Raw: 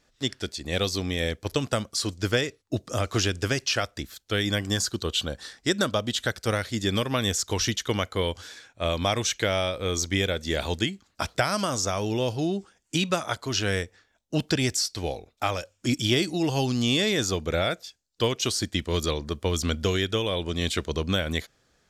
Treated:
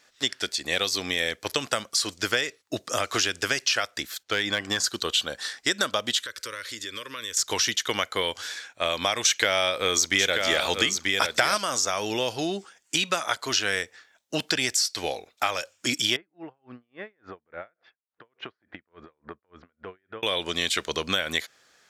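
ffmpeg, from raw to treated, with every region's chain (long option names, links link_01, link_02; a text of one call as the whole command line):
ffmpeg -i in.wav -filter_complex "[0:a]asettb=1/sr,asplit=3[link_01][link_02][link_03];[link_01]atrim=end=4.234[link_04];[link_02]atrim=start=4.23:end=4.84,asetpts=PTS-STARTPTS,afade=type=in:duration=0.004:curve=qsin,afade=type=out:start_time=0.606:duration=0.004:curve=qsin,aemphasis=mode=reproduction:type=50fm,volume=17.5dB,asoftclip=hard,volume=-17.5dB[link_05];[link_03]atrim=start=4.836[link_06];[link_04][link_05]acrossfade=duration=0.004:curve1=hsin:curve2=qsin[link_07];[link_07][link_06]acrossfade=duration=0.004:curve1=qsin:curve2=hsin,asettb=1/sr,asplit=3[link_08][link_09][link_10];[link_08]atrim=end=6.204[link_11];[link_09]atrim=start=6.2:end=7.37,asetpts=PTS-STARTPTS,afade=type=in:duration=0.004:curve=qsin,afade=type=out:start_time=1.166:duration=0.004:curve=qsin,equalizer=frequency=170:width_type=o:width=0.64:gain=-13,acompressor=threshold=-38dB:ratio=5:attack=3.2:release=140:knee=1:detection=peak,asuperstop=centerf=750:order=8:qfactor=2.2[link_12];[link_10]atrim=start=7.366[link_13];[link_11][link_12]acrossfade=duration=0.004:curve1=hsin:curve2=qsin[link_14];[link_14][link_13]acrossfade=duration=0.004:curve1=qsin:curve2=hsin,asettb=1/sr,asplit=3[link_15][link_16][link_17];[link_15]atrim=end=9.254[link_18];[link_16]atrim=start=9.25:end=11.58,asetpts=PTS-STARTPTS,afade=type=in:duration=0.004:curve=qsin,afade=type=out:start_time=2.326:duration=0.004:curve=qsin,aecho=1:1:936:0.447,atrim=end_sample=102753,acontrast=60[link_19];[link_17]atrim=start=11.576[link_20];[link_18][link_19]acrossfade=duration=0.004:curve1=hsin:curve2=qsin[link_21];[link_21][link_20]acrossfade=duration=0.004:curve1=qsin:curve2=hsin,asettb=1/sr,asplit=3[link_22][link_23][link_24];[link_22]atrim=end=16.164[link_25];[link_23]atrim=start=16.16:end=20.23,asetpts=PTS-STARTPTS,afade=type=in:duration=0.004:curve=qsin,afade=type=out:start_time=4.066:duration=0.004:curve=qsin,lowpass=frequency=1800:width=0.5412,lowpass=frequency=1800:width=1.3066,acompressor=threshold=-34dB:ratio=6:attack=3.2:release=140:knee=1:detection=peak,aeval=exprs='val(0)*pow(10,-39*(0.5-0.5*cos(2*PI*3.5*n/s))/20)':channel_layout=same[link_26];[link_24]atrim=start=20.226[link_27];[link_25][link_26]acrossfade=duration=0.004:curve1=hsin:curve2=qsin[link_28];[link_28][link_27]acrossfade=duration=0.004:curve1=qsin:curve2=hsin,highpass=frequency=900:poles=1,equalizer=frequency=1800:width=1.5:gain=2.5,acompressor=threshold=-31dB:ratio=2.5,volume=8dB" out.wav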